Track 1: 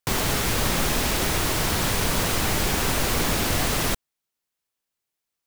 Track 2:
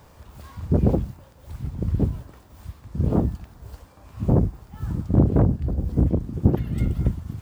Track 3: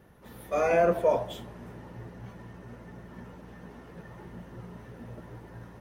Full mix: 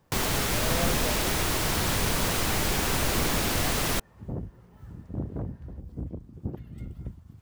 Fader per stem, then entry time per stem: -3.0 dB, -16.0 dB, -12.0 dB; 0.05 s, 0.00 s, 0.00 s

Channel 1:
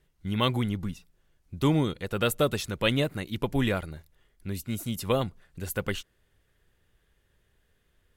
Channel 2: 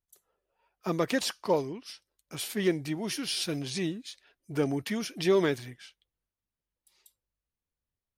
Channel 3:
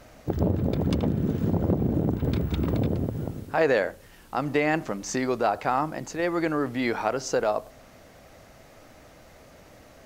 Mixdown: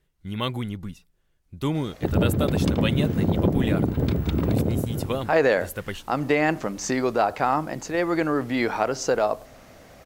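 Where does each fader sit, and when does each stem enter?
-2.0 dB, mute, +2.5 dB; 0.00 s, mute, 1.75 s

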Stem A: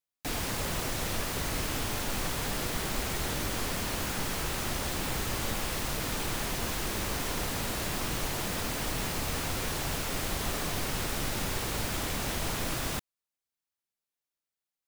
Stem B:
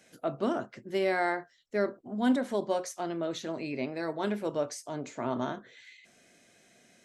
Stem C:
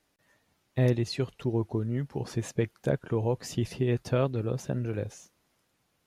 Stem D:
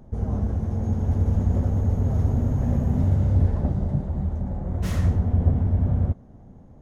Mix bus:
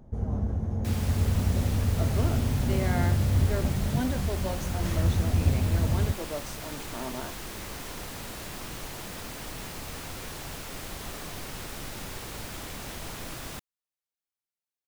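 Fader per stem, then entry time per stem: -6.0 dB, -5.0 dB, mute, -4.0 dB; 0.60 s, 1.75 s, mute, 0.00 s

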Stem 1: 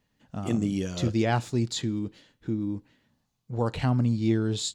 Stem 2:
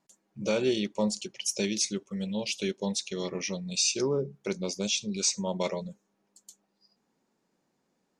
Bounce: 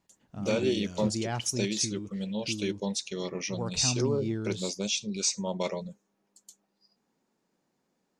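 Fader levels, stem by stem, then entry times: -8.0 dB, -1.0 dB; 0.00 s, 0.00 s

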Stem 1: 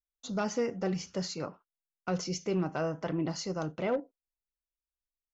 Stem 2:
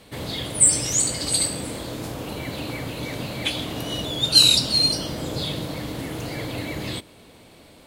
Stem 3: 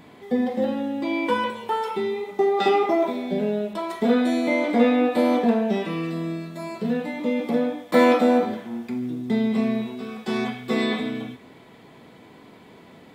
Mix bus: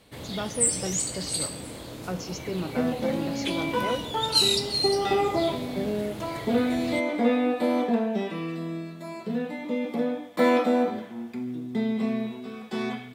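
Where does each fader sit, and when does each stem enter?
-1.0 dB, -7.5 dB, -4.5 dB; 0.00 s, 0.00 s, 2.45 s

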